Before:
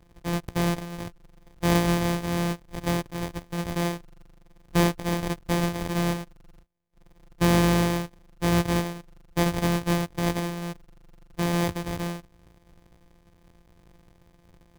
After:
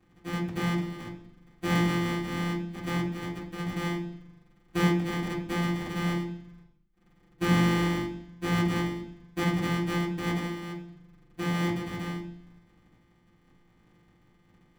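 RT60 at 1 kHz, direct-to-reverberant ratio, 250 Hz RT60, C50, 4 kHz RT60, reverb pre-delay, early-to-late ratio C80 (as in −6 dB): 0.65 s, −8.5 dB, 0.85 s, 7.5 dB, 0.95 s, 3 ms, 11.5 dB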